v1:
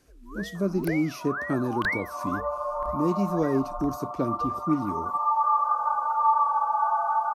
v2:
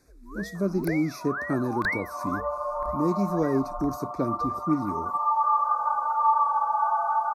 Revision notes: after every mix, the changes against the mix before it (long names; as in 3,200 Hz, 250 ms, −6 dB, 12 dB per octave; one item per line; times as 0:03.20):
master: add Butterworth band-reject 3,000 Hz, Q 2.4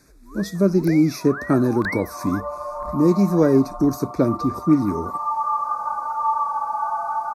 speech +9.0 dB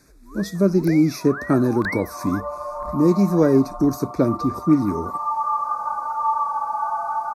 nothing changed